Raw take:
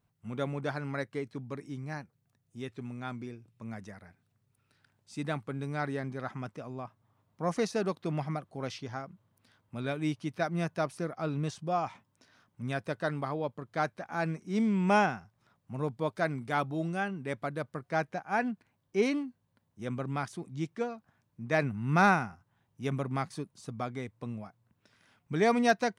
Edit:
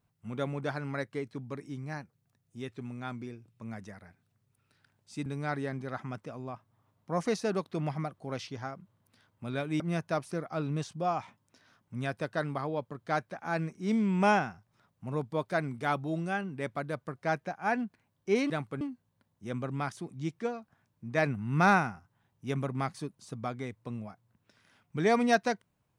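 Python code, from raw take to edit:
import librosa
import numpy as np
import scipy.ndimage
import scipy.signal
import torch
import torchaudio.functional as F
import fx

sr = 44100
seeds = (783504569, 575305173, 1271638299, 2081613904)

y = fx.edit(x, sr, fx.move(start_s=5.26, length_s=0.31, to_s=19.17),
    fx.cut(start_s=10.11, length_s=0.36), tone=tone)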